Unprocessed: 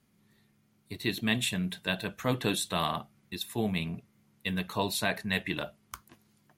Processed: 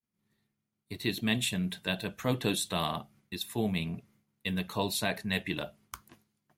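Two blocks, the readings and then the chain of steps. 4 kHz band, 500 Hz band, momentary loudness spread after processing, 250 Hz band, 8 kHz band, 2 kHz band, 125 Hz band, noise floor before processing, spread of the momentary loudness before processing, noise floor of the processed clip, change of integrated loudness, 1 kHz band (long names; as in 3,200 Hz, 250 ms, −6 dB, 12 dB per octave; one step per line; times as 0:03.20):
−0.5 dB, −0.5 dB, 13 LU, 0.0 dB, 0.0 dB, −2.5 dB, 0.0 dB, −69 dBFS, 14 LU, −84 dBFS, −1.0 dB, −2.5 dB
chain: dynamic equaliser 1,400 Hz, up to −4 dB, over −43 dBFS, Q 0.98
downward expander −57 dBFS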